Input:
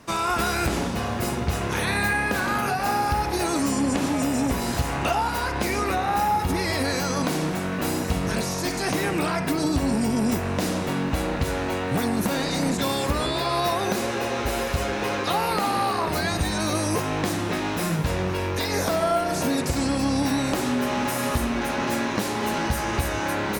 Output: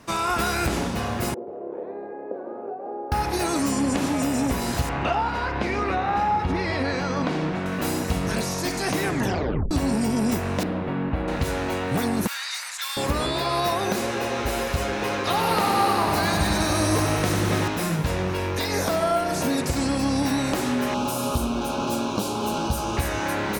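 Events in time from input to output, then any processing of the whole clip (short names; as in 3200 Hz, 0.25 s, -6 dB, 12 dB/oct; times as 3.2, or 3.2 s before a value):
1.34–3.12 Butterworth band-pass 460 Hz, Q 1.6
4.89–7.66 LPF 3400 Hz
9.05 tape stop 0.66 s
10.63–11.28 air absorption 490 m
12.27–12.97 inverse Chebyshev high-pass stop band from 280 Hz, stop band 70 dB
15.15–17.68 lo-fi delay 98 ms, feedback 80%, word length 9-bit, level -5 dB
20.94–22.97 Butterworth band-stop 1900 Hz, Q 1.6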